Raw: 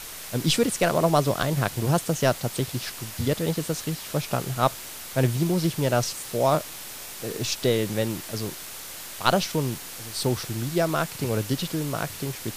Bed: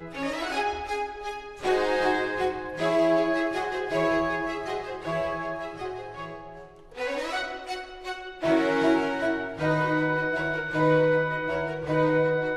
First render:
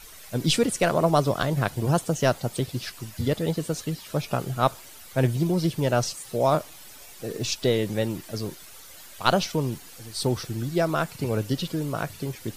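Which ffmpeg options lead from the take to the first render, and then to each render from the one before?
-af "afftdn=nr=11:nf=-39"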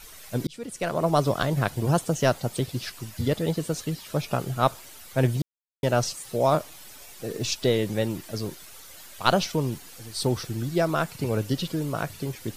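-filter_complex "[0:a]asplit=4[s0][s1][s2][s3];[s0]atrim=end=0.47,asetpts=PTS-STARTPTS,afade=t=out:st=0.466:d=0.004:c=hsin[s4];[s1]atrim=start=0.47:end=5.42,asetpts=PTS-STARTPTS,afade=t=in:d=0.78,afade=t=out:st=4.946:d=0.004:c=hsin[s5];[s2]atrim=start=5.42:end=5.83,asetpts=PTS-STARTPTS,volume=0[s6];[s3]atrim=start=5.83,asetpts=PTS-STARTPTS,afade=t=in:d=0.004:c=hsin[s7];[s4][s5][s6][s7]concat=n=4:v=0:a=1"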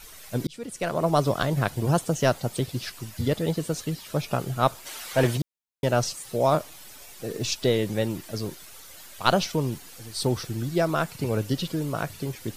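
-filter_complex "[0:a]asplit=3[s0][s1][s2];[s0]afade=t=out:st=4.85:d=0.02[s3];[s1]asplit=2[s4][s5];[s5]highpass=f=720:p=1,volume=7.08,asoftclip=type=tanh:threshold=0.316[s6];[s4][s6]amix=inputs=2:normalize=0,lowpass=f=5600:p=1,volume=0.501,afade=t=in:st=4.85:d=0.02,afade=t=out:st=5.36:d=0.02[s7];[s2]afade=t=in:st=5.36:d=0.02[s8];[s3][s7][s8]amix=inputs=3:normalize=0"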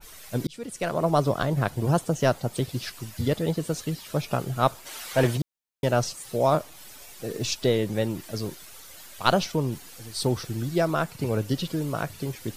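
-af "adynamicequalizer=threshold=0.0141:dfrequency=1700:dqfactor=0.7:tfrequency=1700:tqfactor=0.7:attack=5:release=100:ratio=0.375:range=3:mode=cutabove:tftype=highshelf"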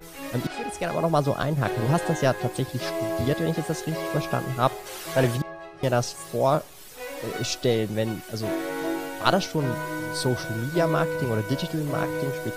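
-filter_complex "[1:a]volume=0.473[s0];[0:a][s0]amix=inputs=2:normalize=0"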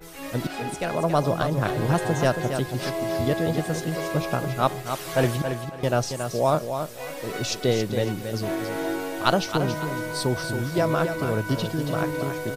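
-af "aecho=1:1:276|552|828:0.422|0.101|0.0243"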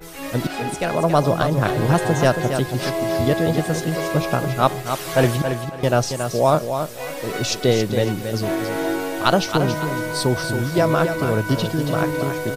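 -af "volume=1.78,alimiter=limit=0.891:level=0:latency=1"

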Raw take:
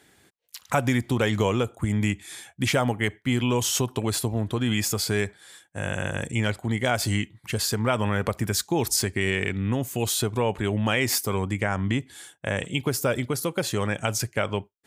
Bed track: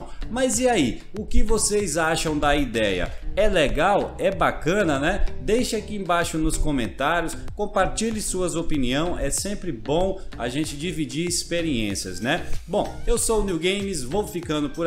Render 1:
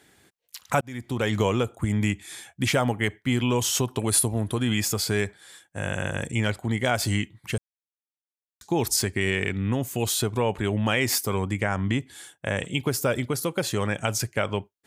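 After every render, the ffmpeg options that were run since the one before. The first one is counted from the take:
-filter_complex "[0:a]asettb=1/sr,asplit=3[s0][s1][s2];[s0]atrim=end=3.994[s3];[s1]atrim=start=3.99:end=4.65,asetpts=PTS-STARTPTS,afade=t=in:d=0.004:c=qsin,afade=t=out:st=0.656:d=0.004:c=qsin,equalizer=f=10000:w=2.4:g=14.5[s4];[s2]atrim=start=4.646[s5];[s3][s4]acrossfade=d=0.004:c1=hsin:c2=qsin[s6];[s6][s5]acrossfade=d=0.004:c1=qsin:c2=hsin,asplit=4[s7][s8][s9][s10];[s7]atrim=end=0.81,asetpts=PTS-STARTPTS,afade=t=out:st=0.806:d=0.004:c=hsin[s11];[s8]atrim=start=0.81:end=7.58,asetpts=PTS-STARTPTS,afade=t=in:d=0.55,afade=t=out:st=6.766:d=0.004:c=hsin[s12];[s9]atrim=start=7.58:end=8.61,asetpts=PTS-STARTPTS,volume=0[s13];[s10]atrim=start=8.61,asetpts=PTS-STARTPTS,afade=t=in:d=0.004:c=hsin[s14];[s11][s12][s13][s14]concat=n=4:v=0:a=1"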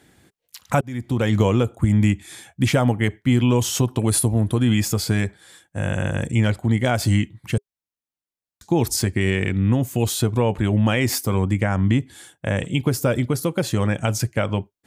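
-af "lowshelf=f=480:g=8.5,bandreject=f=410:w=12"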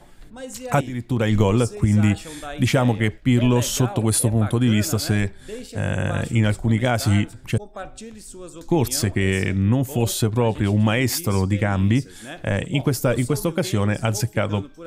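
-filter_complex "[1:a]volume=0.211[s0];[0:a][s0]amix=inputs=2:normalize=0"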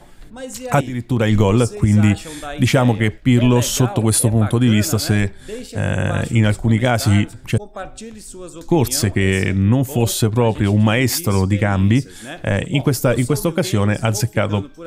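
-af "volume=1.58,alimiter=limit=0.708:level=0:latency=1"

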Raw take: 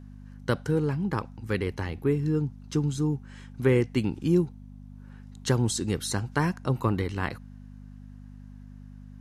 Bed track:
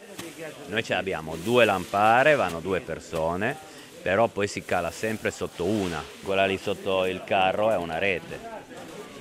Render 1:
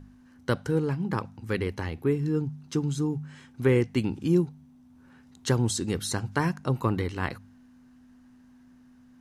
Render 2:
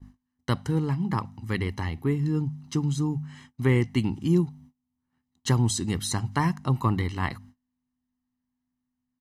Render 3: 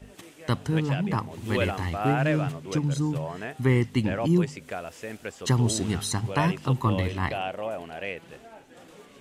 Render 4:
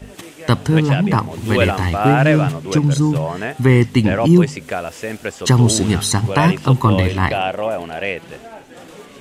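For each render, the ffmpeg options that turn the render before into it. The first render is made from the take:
-af "bandreject=f=50:t=h:w=4,bandreject=f=100:t=h:w=4,bandreject=f=150:t=h:w=4,bandreject=f=200:t=h:w=4"
-af "agate=range=0.0398:threshold=0.00316:ratio=16:detection=peak,aecho=1:1:1:0.56"
-filter_complex "[1:a]volume=0.355[s0];[0:a][s0]amix=inputs=2:normalize=0"
-af "volume=3.55,alimiter=limit=0.794:level=0:latency=1"

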